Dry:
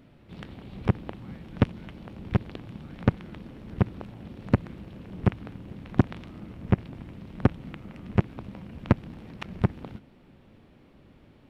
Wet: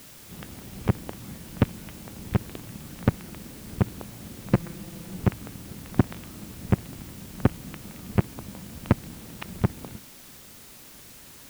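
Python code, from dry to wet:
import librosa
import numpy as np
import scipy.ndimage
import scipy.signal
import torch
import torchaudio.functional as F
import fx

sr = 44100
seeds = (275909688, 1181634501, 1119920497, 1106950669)

y = fx.comb(x, sr, ms=5.9, depth=0.76, at=(4.53, 5.17))
y = fx.quant_dither(y, sr, seeds[0], bits=8, dither='triangular')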